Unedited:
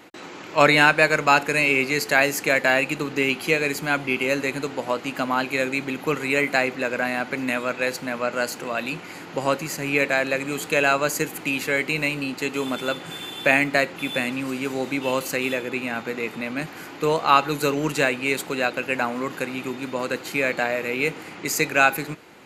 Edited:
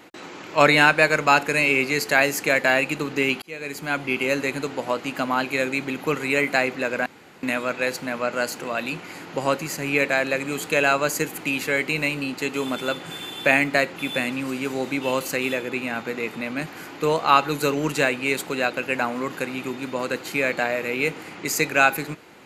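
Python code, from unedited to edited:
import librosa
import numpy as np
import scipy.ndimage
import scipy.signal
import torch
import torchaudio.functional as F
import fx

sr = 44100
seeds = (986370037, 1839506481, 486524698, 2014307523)

y = fx.edit(x, sr, fx.fade_in_span(start_s=3.42, length_s=0.94, curve='qsin'),
    fx.room_tone_fill(start_s=7.06, length_s=0.37), tone=tone)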